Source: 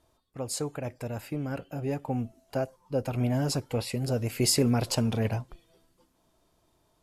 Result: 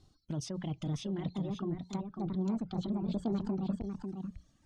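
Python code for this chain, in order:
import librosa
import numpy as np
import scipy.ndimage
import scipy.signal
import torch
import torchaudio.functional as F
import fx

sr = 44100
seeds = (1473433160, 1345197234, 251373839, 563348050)

p1 = fx.speed_glide(x, sr, from_pct=117, to_pct=185)
p2 = fx.env_lowpass_down(p1, sr, base_hz=1300.0, full_db=-25.5)
p3 = fx.air_absorb(p2, sr, metres=96.0)
p4 = fx.hum_notches(p3, sr, base_hz=60, count=3)
p5 = fx.over_compress(p4, sr, threshold_db=-38.0, ratio=-1.0)
p6 = p4 + F.gain(torch.from_numpy(p5), 0.5).numpy()
p7 = fx.band_shelf(p6, sr, hz=1000.0, db=-15.0, octaves=2.9)
p8 = fx.dereverb_blind(p7, sr, rt60_s=1.1)
p9 = p8 + 10.0 ** (-6.5 / 20.0) * np.pad(p8, (int(547 * sr / 1000.0), 0))[:len(p8)]
p10 = fx.transformer_sat(p9, sr, knee_hz=210.0)
y = F.gain(torch.from_numpy(p10), -1.5).numpy()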